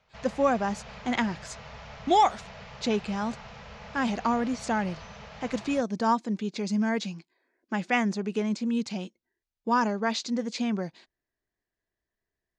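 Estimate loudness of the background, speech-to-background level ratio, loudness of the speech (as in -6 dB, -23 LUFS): -44.5 LUFS, 16.0 dB, -28.5 LUFS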